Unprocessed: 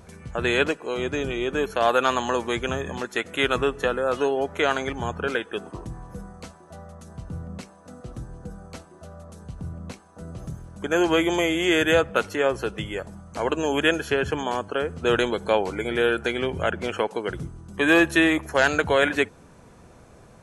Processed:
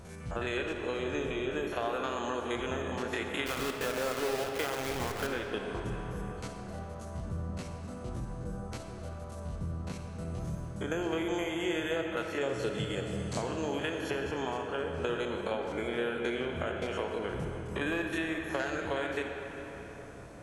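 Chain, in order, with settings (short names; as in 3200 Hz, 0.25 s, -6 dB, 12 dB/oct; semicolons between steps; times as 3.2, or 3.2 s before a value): stepped spectrum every 50 ms; 12.41–13.42 graphic EQ 125/250/500/4000/8000 Hz +12/+4/+4/+9/+11 dB; compressor 6:1, threshold -32 dBFS, peak gain reduction 18 dB; 3.46–5.27 requantised 6-bit, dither none; on a send: reverb RT60 4.4 s, pre-delay 15 ms, DRR 3 dB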